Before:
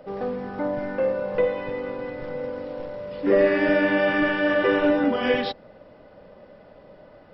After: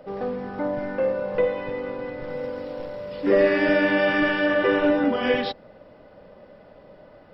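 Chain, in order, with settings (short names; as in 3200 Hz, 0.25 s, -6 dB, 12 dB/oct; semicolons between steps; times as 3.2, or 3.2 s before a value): 2.29–4.46 high shelf 4700 Hz +9.5 dB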